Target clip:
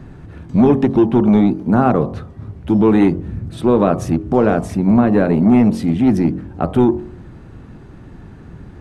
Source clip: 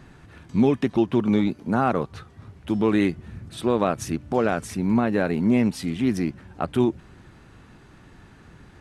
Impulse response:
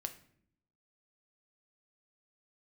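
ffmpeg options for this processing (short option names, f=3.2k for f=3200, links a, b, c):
-filter_complex "[0:a]tiltshelf=f=970:g=7.5,bandreject=f=45.25:t=h:w=4,bandreject=f=90.5:t=h:w=4,bandreject=f=135.75:t=h:w=4,bandreject=f=181:t=h:w=4,bandreject=f=226.25:t=h:w=4,bandreject=f=271.5:t=h:w=4,bandreject=f=316.75:t=h:w=4,bandreject=f=362:t=h:w=4,bandreject=f=407.25:t=h:w=4,bandreject=f=452.5:t=h:w=4,bandreject=f=497.75:t=h:w=4,bandreject=f=543:t=h:w=4,bandreject=f=588.25:t=h:w=4,bandreject=f=633.5:t=h:w=4,bandreject=f=678.75:t=h:w=4,bandreject=f=724:t=h:w=4,bandreject=f=769.25:t=h:w=4,bandreject=f=814.5:t=h:w=4,bandreject=f=859.75:t=h:w=4,bandreject=f=905:t=h:w=4,bandreject=f=950.25:t=h:w=4,bandreject=f=995.5:t=h:w=4,bandreject=f=1.04075k:t=h:w=4,bandreject=f=1.086k:t=h:w=4,bandreject=f=1.13125k:t=h:w=4,bandreject=f=1.1765k:t=h:w=4,bandreject=f=1.22175k:t=h:w=4,bandreject=f=1.267k:t=h:w=4,acrossover=split=580[a][b];[a]asoftclip=type=tanh:threshold=-13dB[c];[c][b]amix=inputs=2:normalize=0,volume=6dB"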